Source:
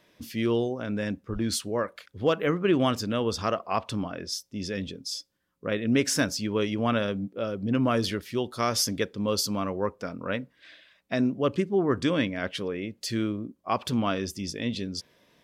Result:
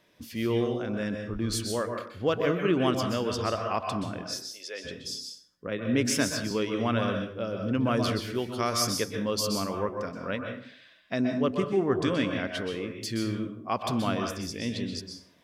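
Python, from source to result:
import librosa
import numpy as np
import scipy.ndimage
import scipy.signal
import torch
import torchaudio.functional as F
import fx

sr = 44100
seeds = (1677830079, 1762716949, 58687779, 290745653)

y = fx.highpass(x, sr, hz=fx.line((4.22, 870.0), (4.84, 390.0)), slope=24, at=(4.22, 4.84), fade=0.02)
y = fx.rev_plate(y, sr, seeds[0], rt60_s=0.52, hf_ratio=0.75, predelay_ms=115, drr_db=3.5)
y = fx.band_widen(y, sr, depth_pct=40, at=(5.67, 6.51))
y = y * librosa.db_to_amplitude(-2.5)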